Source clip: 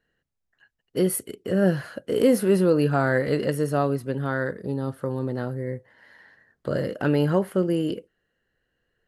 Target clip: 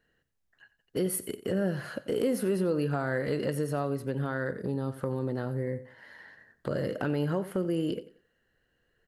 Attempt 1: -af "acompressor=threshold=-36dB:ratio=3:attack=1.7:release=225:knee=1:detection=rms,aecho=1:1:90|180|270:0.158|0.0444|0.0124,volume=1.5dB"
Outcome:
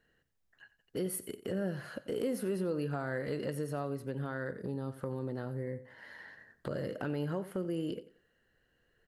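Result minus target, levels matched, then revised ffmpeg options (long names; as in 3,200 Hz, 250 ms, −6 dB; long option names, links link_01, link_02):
downward compressor: peak gain reduction +6 dB
-af "acompressor=threshold=-27dB:ratio=3:attack=1.7:release=225:knee=1:detection=rms,aecho=1:1:90|180|270:0.158|0.0444|0.0124,volume=1.5dB"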